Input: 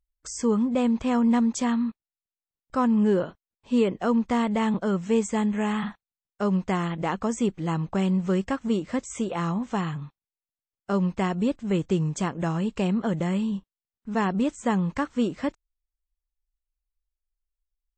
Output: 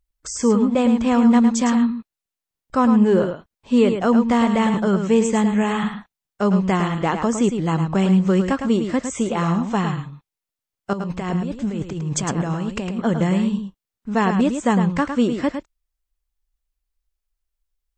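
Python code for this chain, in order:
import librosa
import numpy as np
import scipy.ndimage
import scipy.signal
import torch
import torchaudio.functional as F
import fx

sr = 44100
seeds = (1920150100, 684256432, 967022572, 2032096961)

y = fx.over_compress(x, sr, threshold_db=-31.0, ratio=-1.0, at=(10.93, 12.99))
y = y + 10.0 ** (-7.5 / 20.0) * np.pad(y, (int(107 * sr / 1000.0), 0))[:len(y)]
y = F.gain(torch.from_numpy(y), 6.0).numpy()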